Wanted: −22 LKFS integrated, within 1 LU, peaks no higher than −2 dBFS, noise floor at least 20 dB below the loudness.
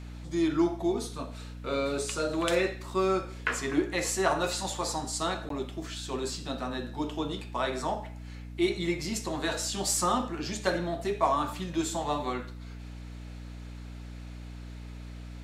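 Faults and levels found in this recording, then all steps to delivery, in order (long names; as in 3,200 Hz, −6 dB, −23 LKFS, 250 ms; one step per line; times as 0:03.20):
number of dropouts 1; longest dropout 13 ms; mains hum 60 Hz; hum harmonics up to 300 Hz; level of the hum −39 dBFS; integrated loudness −30.5 LKFS; sample peak −8.5 dBFS; target loudness −22.0 LKFS
→ repair the gap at 0:05.49, 13 ms
hum removal 60 Hz, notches 5
level +8.5 dB
brickwall limiter −2 dBFS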